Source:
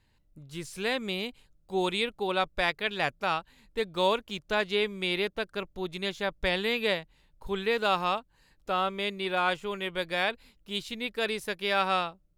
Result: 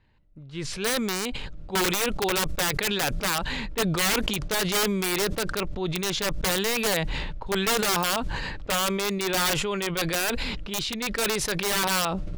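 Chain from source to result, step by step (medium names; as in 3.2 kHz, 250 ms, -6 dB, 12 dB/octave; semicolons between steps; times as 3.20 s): level-controlled noise filter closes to 2.8 kHz, open at -22.5 dBFS; integer overflow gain 22 dB; decay stretcher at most 21 dB/s; trim +4 dB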